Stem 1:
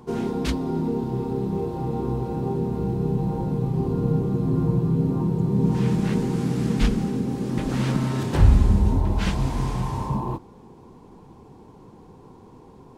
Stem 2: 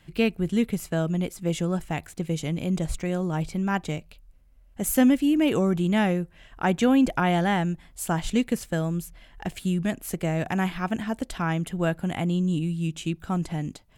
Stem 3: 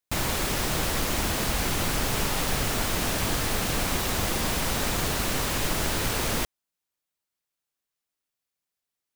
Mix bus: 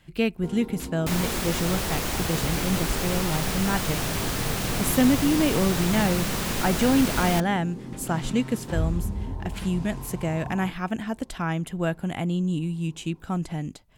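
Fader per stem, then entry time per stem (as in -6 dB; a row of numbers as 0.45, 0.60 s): -11.5, -1.0, -1.5 dB; 0.35, 0.00, 0.95 s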